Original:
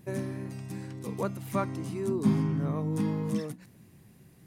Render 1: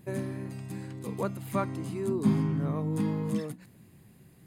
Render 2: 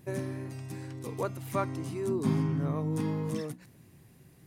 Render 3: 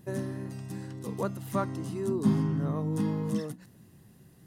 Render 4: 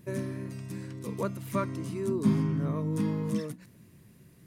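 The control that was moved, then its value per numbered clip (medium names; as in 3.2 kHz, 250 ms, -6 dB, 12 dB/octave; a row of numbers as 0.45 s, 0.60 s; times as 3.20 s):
band-stop, frequency: 5.7 kHz, 200 Hz, 2.3 kHz, 780 Hz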